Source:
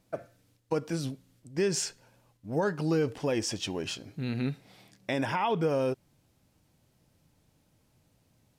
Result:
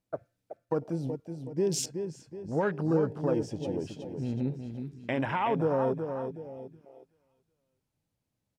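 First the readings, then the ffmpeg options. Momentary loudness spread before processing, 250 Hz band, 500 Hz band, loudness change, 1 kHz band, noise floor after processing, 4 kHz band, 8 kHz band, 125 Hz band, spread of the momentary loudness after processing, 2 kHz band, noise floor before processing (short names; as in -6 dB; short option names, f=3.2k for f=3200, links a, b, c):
13 LU, +1.0 dB, +1.0 dB, 0.0 dB, +0.5 dB, -83 dBFS, -7.0 dB, -3.0 dB, +1.0 dB, 15 LU, -2.5 dB, -70 dBFS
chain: -filter_complex "[0:a]asplit=2[a][b];[b]aecho=0:1:373|746|1119|1492|1865:0.447|0.192|0.0826|0.0355|0.0153[c];[a][c]amix=inputs=2:normalize=0,afwtdn=0.0158"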